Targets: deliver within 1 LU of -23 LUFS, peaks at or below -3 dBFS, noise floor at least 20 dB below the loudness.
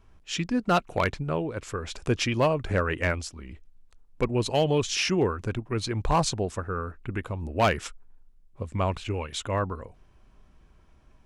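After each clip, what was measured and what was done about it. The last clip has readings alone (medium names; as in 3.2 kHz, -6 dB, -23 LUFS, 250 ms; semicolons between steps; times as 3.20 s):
clipped samples 0.4%; clipping level -15.5 dBFS; loudness -28.0 LUFS; peak level -15.5 dBFS; loudness target -23.0 LUFS
-> clip repair -15.5 dBFS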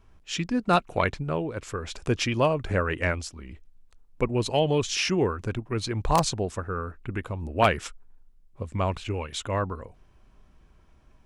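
clipped samples 0.0%; loudness -27.5 LUFS; peak level -6.5 dBFS; loudness target -23.0 LUFS
-> trim +4.5 dB; peak limiter -3 dBFS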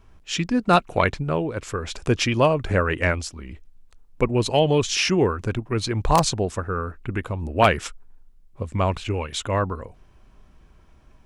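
loudness -23.0 LUFS; peak level -3.0 dBFS; noise floor -53 dBFS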